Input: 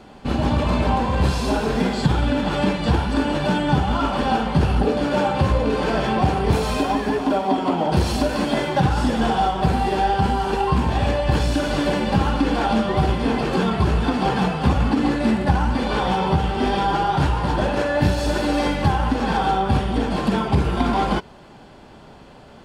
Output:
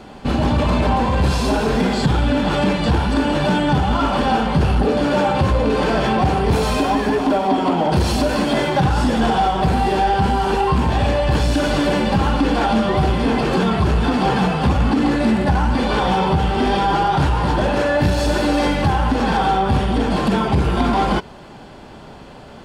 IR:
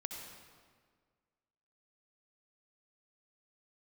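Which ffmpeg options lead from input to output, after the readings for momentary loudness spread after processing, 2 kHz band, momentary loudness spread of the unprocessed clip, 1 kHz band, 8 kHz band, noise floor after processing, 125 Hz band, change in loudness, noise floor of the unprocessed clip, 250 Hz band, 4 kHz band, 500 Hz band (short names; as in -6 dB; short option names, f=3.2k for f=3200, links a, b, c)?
1 LU, +3.5 dB, 2 LU, +3.0 dB, +3.5 dB, -39 dBFS, +2.0 dB, +3.0 dB, -44 dBFS, +3.0 dB, +3.5 dB, +3.0 dB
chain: -filter_complex "[0:a]asplit=2[a][b];[b]alimiter=limit=-15.5dB:level=0:latency=1,volume=-1dB[c];[a][c]amix=inputs=2:normalize=0,asoftclip=type=tanh:threshold=-7.5dB"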